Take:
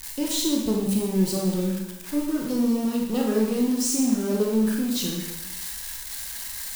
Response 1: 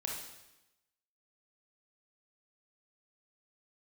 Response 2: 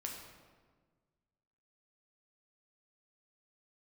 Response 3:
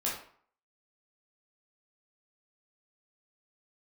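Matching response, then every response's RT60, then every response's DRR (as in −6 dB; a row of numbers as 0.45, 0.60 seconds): 1; 0.95, 1.5, 0.55 seconds; −1.5, −0.5, −6.0 decibels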